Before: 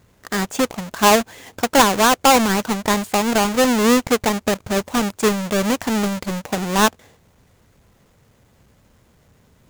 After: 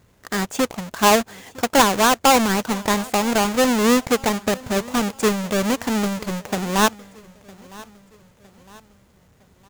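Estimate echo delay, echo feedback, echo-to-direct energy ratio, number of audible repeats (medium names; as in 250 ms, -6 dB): 959 ms, 48%, -21.0 dB, 3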